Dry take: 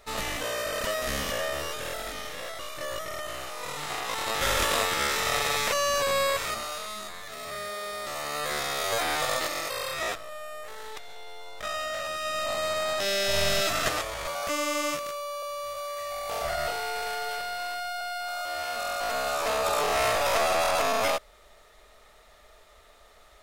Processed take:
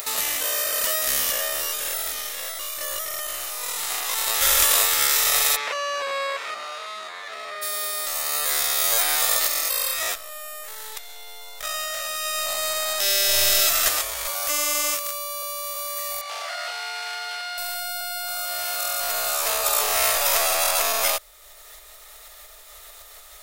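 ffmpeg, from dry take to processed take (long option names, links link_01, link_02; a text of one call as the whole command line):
ffmpeg -i in.wav -filter_complex "[0:a]asplit=3[link_01][link_02][link_03];[link_01]afade=type=out:start_time=5.55:duration=0.02[link_04];[link_02]highpass=240,lowpass=2500,afade=type=in:start_time=5.55:duration=0.02,afade=type=out:start_time=7.61:duration=0.02[link_05];[link_03]afade=type=in:start_time=7.61:duration=0.02[link_06];[link_04][link_05][link_06]amix=inputs=3:normalize=0,asettb=1/sr,asplit=3[link_07][link_08][link_09];[link_07]atrim=end=16.214[link_10];[link_08]atrim=start=16.21:end=17.58,asetpts=PTS-STARTPTS,afade=type=in:duration=0.004:curve=qsin,afade=type=out:start_time=1.366:duration=0.004:curve=qsin,highpass=790,lowpass=4300[link_11];[link_09]atrim=start=17.576[link_12];[link_10][link_11]acrossfade=duration=0.004:curve1=hsin:curve2=qsin[link_13];[link_13][link_12]acrossfade=duration=0.004:curve1=qsin:curve2=hsin,asubboost=boost=10:cutoff=56,acompressor=mode=upward:threshold=-29dB:ratio=2.5,aemphasis=mode=production:type=riaa" out.wav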